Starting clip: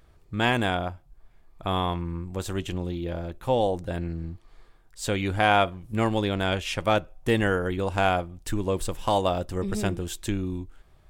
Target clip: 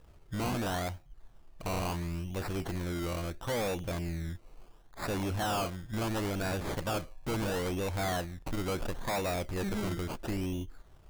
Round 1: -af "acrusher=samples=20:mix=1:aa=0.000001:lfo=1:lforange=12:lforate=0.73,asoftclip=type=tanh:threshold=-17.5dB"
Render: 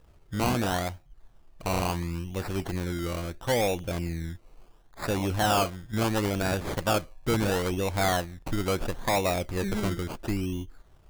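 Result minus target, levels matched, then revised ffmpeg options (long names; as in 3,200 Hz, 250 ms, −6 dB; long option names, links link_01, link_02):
soft clipping: distortion −9 dB
-af "acrusher=samples=20:mix=1:aa=0.000001:lfo=1:lforange=12:lforate=0.73,asoftclip=type=tanh:threshold=-29.5dB"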